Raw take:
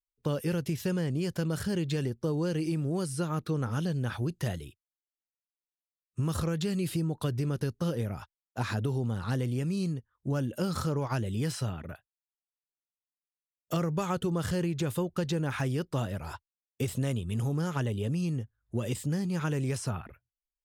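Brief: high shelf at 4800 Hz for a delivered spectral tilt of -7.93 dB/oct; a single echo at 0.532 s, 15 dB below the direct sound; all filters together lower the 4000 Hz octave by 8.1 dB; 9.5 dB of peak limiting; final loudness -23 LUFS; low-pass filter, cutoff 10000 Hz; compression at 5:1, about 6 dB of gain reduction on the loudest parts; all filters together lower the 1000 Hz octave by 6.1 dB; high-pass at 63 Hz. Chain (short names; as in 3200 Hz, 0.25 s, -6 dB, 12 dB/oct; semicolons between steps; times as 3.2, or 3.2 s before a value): HPF 63 Hz; LPF 10000 Hz; bell 1000 Hz -7.5 dB; bell 4000 Hz -7 dB; high shelf 4800 Hz -7 dB; compressor 5:1, threshold -33 dBFS; limiter -33 dBFS; echo 0.532 s -15 dB; gain +18.5 dB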